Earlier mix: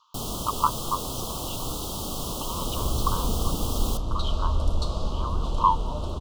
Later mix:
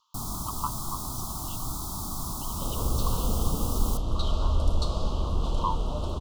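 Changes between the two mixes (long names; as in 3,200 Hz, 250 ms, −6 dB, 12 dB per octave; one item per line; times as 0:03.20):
speech: add parametric band 1,500 Hz −11 dB 2.8 octaves
first sound: add phaser with its sweep stopped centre 1,200 Hz, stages 4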